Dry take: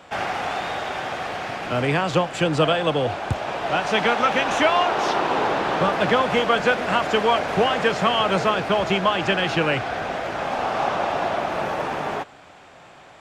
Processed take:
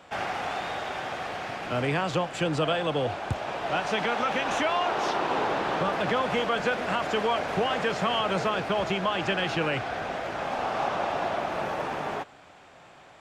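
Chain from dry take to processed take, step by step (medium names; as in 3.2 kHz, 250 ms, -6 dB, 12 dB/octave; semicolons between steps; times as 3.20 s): peak limiter -11.5 dBFS, peak gain reduction 5 dB; trim -5 dB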